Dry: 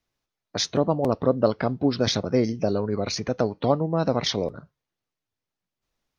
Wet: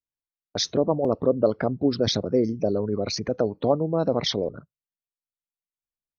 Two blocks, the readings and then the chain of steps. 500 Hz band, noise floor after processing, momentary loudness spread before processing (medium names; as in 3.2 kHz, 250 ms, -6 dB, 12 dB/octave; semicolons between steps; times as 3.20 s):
+1.0 dB, under -85 dBFS, 5 LU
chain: resonances exaggerated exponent 1.5; gate -39 dBFS, range -22 dB